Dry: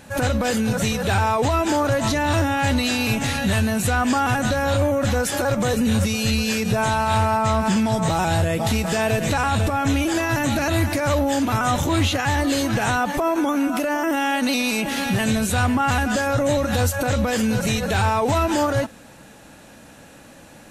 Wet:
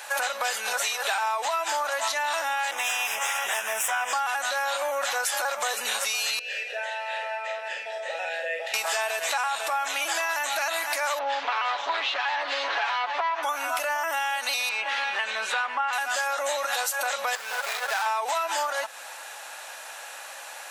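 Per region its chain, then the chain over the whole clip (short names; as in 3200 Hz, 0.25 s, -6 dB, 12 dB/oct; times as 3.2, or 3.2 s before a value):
2.71–4.13 minimum comb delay 9.3 ms + Butterworth band-stop 4300 Hz, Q 2.4
6.39–8.74 vowel filter e + bell 170 Hz -5 dB 0.91 oct + doubler 49 ms -5 dB
11.19–13.43 minimum comb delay 7.1 ms + LPF 4200 Hz 24 dB/oct
14.69–15.93 LPF 3100 Hz + notch 700 Hz, Q 5.6
17.35–18.06 median filter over 15 samples + HPF 920 Hz 6 dB/oct
whole clip: HPF 730 Hz 24 dB/oct; compressor, threshold -34 dBFS; gain +9 dB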